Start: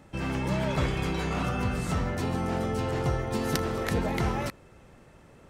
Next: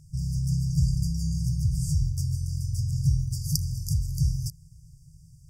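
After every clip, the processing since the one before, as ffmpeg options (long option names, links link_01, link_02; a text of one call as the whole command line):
ffmpeg -i in.wav -af "afftfilt=real='re*(1-between(b*sr/4096,170,4600))':imag='im*(1-between(b*sr/4096,170,4600))':win_size=4096:overlap=0.75,equalizer=frequency=280:width_type=o:width=0.58:gain=13,volume=6dB" out.wav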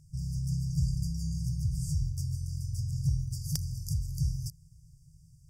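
ffmpeg -i in.wav -af "volume=13.5dB,asoftclip=hard,volume=-13.5dB,volume=-5.5dB" out.wav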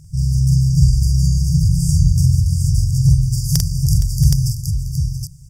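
ffmpeg -i in.wav -af "acontrast=73,aecho=1:1:45|466|680|770:0.668|0.211|0.2|0.631,volume=7.5dB" out.wav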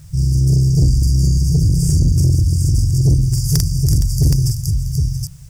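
ffmpeg -i in.wav -af "asoftclip=type=tanh:threshold=-10dB,acrusher=bits=8:mix=0:aa=0.000001,volume=3dB" out.wav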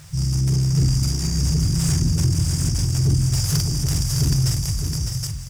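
ffmpeg -i in.wav -filter_complex "[0:a]asplit=2[link_01][link_02];[link_02]highpass=frequency=720:poles=1,volume=19dB,asoftclip=type=tanh:threshold=-7dB[link_03];[link_01][link_03]amix=inputs=2:normalize=0,lowpass=frequency=3600:poles=1,volume=-6dB,aecho=1:1:607:0.501,volume=-4dB" out.wav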